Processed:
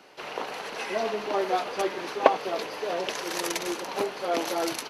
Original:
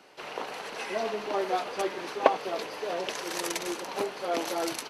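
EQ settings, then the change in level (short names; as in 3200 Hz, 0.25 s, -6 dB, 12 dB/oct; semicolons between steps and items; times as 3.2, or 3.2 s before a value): bell 8300 Hz -4.5 dB 0.28 oct; +2.5 dB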